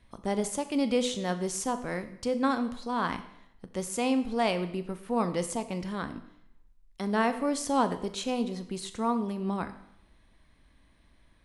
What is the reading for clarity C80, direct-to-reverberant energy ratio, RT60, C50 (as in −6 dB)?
15.0 dB, 10.0 dB, 0.75 s, 12.5 dB